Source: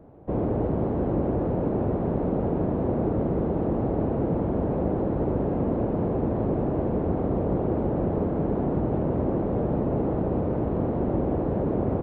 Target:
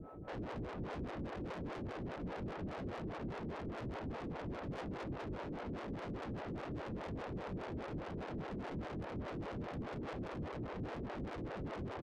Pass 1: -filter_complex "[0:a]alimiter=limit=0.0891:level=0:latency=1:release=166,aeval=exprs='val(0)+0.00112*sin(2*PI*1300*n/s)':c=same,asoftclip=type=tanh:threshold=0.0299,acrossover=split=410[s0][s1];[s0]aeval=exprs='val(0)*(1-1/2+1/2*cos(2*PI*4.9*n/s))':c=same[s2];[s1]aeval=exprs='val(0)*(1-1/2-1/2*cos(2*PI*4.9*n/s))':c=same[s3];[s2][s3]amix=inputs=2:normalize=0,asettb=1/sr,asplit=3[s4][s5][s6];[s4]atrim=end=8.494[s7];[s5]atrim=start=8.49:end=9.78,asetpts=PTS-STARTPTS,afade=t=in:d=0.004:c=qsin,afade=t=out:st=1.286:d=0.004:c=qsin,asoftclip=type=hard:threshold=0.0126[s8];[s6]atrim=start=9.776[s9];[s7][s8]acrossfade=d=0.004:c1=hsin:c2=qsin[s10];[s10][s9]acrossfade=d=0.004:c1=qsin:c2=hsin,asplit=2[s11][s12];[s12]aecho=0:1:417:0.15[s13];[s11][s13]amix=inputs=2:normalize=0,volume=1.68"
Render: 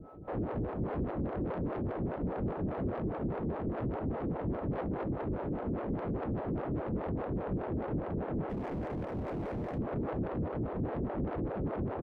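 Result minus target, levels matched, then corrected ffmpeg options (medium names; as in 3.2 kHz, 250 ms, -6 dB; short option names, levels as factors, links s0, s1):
saturation: distortion -6 dB
-filter_complex "[0:a]alimiter=limit=0.0891:level=0:latency=1:release=166,aeval=exprs='val(0)+0.00112*sin(2*PI*1300*n/s)':c=same,asoftclip=type=tanh:threshold=0.00841,acrossover=split=410[s0][s1];[s0]aeval=exprs='val(0)*(1-1/2+1/2*cos(2*PI*4.9*n/s))':c=same[s2];[s1]aeval=exprs='val(0)*(1-1/2-1/2*cos(2*PI*4.9*n/s))':c=same[s3];[s2][s3]amix=inputs=2:normalize=0,asettb=1/sr,asplit=3[s4][s5][s6];[s4]atrim=end=8.494[s7];[s5]atrim=start=8.49:end=9.78,asetpts=PTS-STARTPTS,afade=t=in:d=0.004:c=qsin,afade=t=out:st=1.286:d=0.004:c=qsin,asoftclip=type=hard:threshold=0.0126[s8];[s6]atrim=start=9.776[s9];[s7][s8]acrossfade=d=0.004:c1=hsin:c2=qsin[s10];[s10][s9]acrossfade=d=0.004:c1=qsin:c2=hsin,asplit=2[s11][s12];[s12]aecho=0:1:417:0.15[s13];[s11][s13]amix=inputs=2:normalize=0,volume=1.68"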